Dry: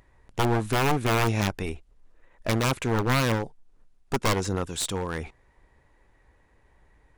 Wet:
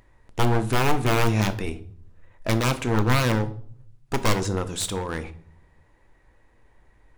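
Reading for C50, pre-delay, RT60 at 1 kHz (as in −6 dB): 16.0 dB, 3 ms, 0.50 s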